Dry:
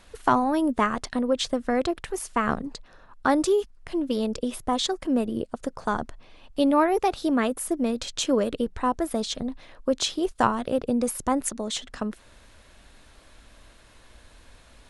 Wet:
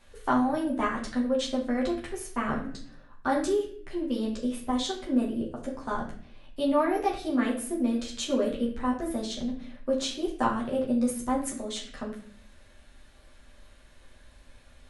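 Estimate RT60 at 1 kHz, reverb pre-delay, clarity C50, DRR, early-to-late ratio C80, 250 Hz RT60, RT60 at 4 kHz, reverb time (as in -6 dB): 0.50 s, 8 ms, 7.0 dB, -4.5 dB, 10.5 dB, 0.80 s, 0.45 s, 0.55 s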